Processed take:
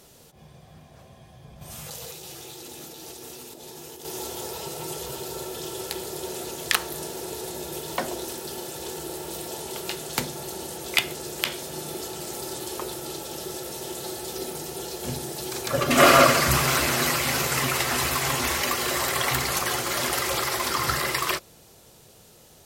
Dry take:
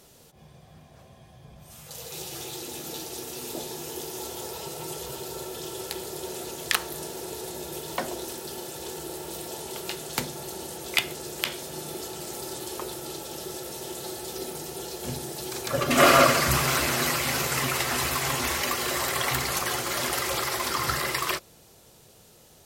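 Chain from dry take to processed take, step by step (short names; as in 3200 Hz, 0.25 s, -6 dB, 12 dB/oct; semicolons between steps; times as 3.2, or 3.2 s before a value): 1.61–4.05 negative-ratio compressor -43 dBFS, ratio -1; gain +2 dB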